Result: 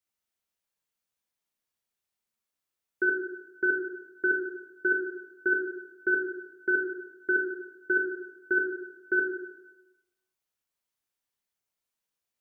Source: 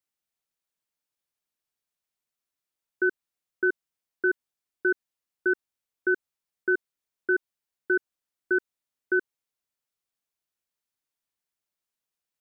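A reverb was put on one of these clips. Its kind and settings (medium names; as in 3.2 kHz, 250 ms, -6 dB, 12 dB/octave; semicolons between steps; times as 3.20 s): plate-style reverb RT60 0.98 s, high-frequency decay 0.75×, DRR -0.5 dB; trim -2 dB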